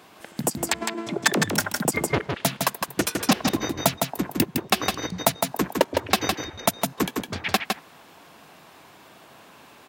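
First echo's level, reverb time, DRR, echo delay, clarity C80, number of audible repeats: -4.5 dB, none, none, 0.159 s, none, 1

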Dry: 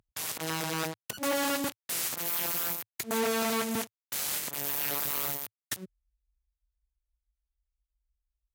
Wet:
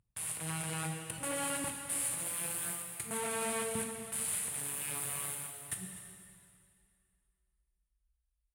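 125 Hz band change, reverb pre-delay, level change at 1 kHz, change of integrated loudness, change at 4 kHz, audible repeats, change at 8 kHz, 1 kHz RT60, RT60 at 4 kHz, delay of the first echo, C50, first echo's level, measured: +0.5 dB, 5 ms, -6.5 dB, -5.0 dB, -9.5 dB, 1, +0.5 dB, 2.4 s, 2.2 s, 0.249 s, 3.0 dB, -16.0 dB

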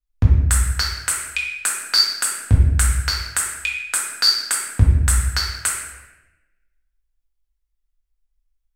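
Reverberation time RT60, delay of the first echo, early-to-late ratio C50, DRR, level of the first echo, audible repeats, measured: 1.0 s, none, 1.5 dB, -4.0 dB, none, none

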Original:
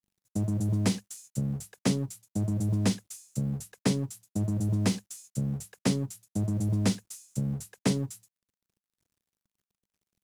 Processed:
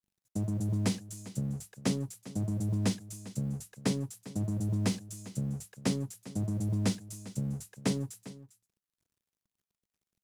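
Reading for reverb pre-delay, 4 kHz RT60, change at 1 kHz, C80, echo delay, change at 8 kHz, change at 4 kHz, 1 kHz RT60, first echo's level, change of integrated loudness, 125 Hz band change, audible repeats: none, none, -3.5 dB, none, 0.4 s, -3.5 dB, -3.5 dB, none, -16.5 dB, -3.5 dB, -3.5 dB, 1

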